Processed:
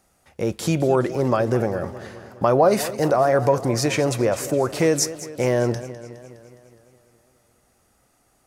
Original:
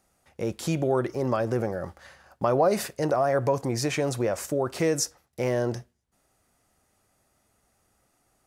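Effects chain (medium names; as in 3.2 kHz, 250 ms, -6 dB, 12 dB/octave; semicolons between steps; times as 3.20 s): modulated delay 207 ms, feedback 61%, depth 121 cents, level -15 dB; trim +5.5 dB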